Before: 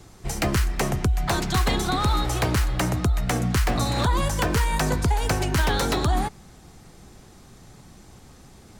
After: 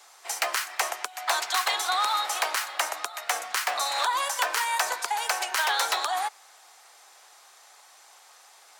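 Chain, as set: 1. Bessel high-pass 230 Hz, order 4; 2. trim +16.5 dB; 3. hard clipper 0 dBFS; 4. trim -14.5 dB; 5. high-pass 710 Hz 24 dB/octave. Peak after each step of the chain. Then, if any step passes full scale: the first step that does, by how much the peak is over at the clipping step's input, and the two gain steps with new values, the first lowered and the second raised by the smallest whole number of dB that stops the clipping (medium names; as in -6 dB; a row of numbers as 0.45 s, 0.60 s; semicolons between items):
-11.0 dBFS, +5.5 dBFS, 0.0 dBFS, -14.5 dBFS, -9.5 dBFS; step 2, 5.5 dB; step 2 +10.5 dB, step 4 -8.5 dB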